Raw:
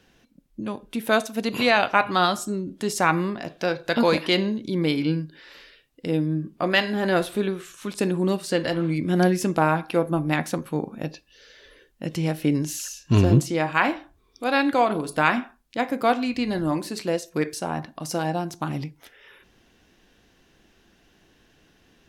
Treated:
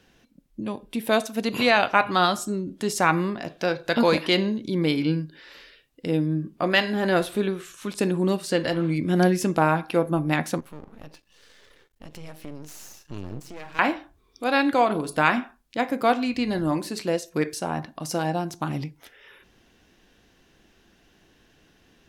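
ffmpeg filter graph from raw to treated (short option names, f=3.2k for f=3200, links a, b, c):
-filter_complex "[0:a]asettb=1/sr,asplit=3[a][b][c];[a]atrim=end=0.604[d];[b]atrim=start=0.6:end=1.22,asetpts=PTS-STARTPTS,afade=t=in:d=0.004:c=qsin,afade=t=out:st=0.616:d=0.004:c=qsin,equalizer=f=1.4k:t=o:w=0.33:g=-7,bandreject=f=6.4k:w=13[e];[c]atrim=start=1.216[f];[d][e]acrossfade=d=0.004:c1=hsin:c2=qsin[g];[g][f]acrossfade=d=0.004:c1=qsin:c2=hsin,asettb=1/sr,asplit=3[h][i][j];[h]atrim=end=10.604[k];[i]atrim=start=10.6:end=13.79,asetpts=PTS-STARTPTS,afade=t=in:d=0.004:c=qsin,afade=t=out:st=3.186:d=0.004:c=qsin,aeval=exprs='max(val(0),0)':c=same,acompressor=threshold=-43dB:ratio=2:attack=3.2:release=140:knee=1:detection=peak[l];[j]atrim=start=13.786[m];[k][l]acrossfade=d=0.004:c1=hsin:c2=qsin[n];[n][m]acrossfade=d=0.004:c1=qsin:c2=hsin"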